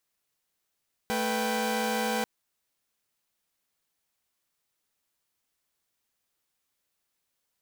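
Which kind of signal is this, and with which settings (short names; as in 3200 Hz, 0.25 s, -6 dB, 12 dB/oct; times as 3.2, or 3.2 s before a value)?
chord A3/B4/G5 saw, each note -28.5 dBFS 1.14 s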